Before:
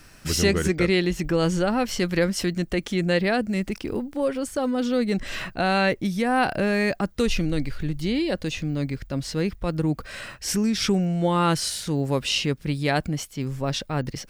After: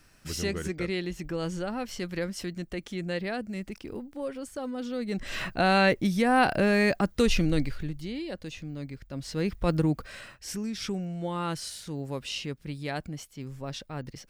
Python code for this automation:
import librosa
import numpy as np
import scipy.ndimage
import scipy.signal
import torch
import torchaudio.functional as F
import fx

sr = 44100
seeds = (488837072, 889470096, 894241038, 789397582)

y = fx.gain(x, sr, db=fx.line((4.99, -10.0), (5.46, -0.5), (7.59, -0.5), (8.08, -11.0), (9.05, -11.0), (9.71, 1.5), (10.35, -10.5)))